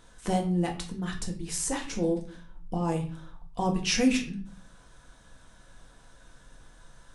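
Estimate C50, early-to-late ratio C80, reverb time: 10.5 dB, 14.5 dB, 0.40 s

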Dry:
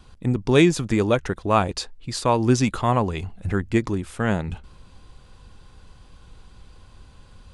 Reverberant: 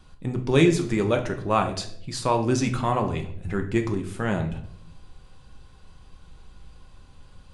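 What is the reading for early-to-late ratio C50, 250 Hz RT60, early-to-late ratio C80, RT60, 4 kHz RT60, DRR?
10.5 dB, 0.85 s, 14.0 dB, 0.65 s, 0.50 s, 4.0 dB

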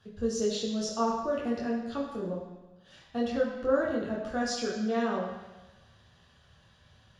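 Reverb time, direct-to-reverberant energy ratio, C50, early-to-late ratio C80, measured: 1.1 s, -4.0 dB, 3.0 dB, 5.0 dB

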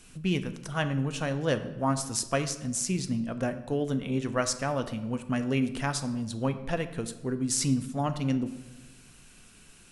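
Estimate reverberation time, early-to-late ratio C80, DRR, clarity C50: 1.2 s, 14.0 dB, 9.0 dB, 12.0 dB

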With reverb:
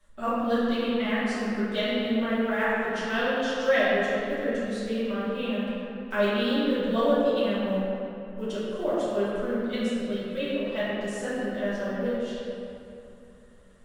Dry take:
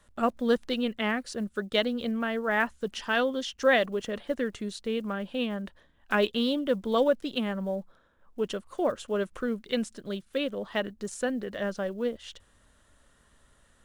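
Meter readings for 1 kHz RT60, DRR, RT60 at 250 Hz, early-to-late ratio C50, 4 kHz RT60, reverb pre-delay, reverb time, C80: 2.8 s, -12.0 dB, 3.8 s, -3.5 dB, 1.6 s, 3 ms, 2.9 s, -2.0 dB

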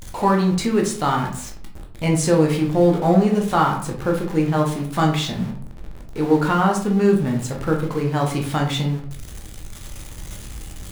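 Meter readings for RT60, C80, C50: 0.55 s, 11.0 dB, 7.5 dB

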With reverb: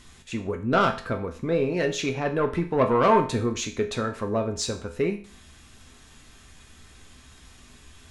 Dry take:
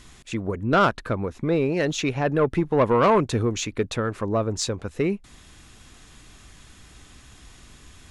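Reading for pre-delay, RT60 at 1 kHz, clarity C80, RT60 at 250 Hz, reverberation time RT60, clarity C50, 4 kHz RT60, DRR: 4 ms, 0.45 s, 15.5 dB, 0.45 s, 0.45 s, 11.5 dB, 0.45 s, 3.5 dB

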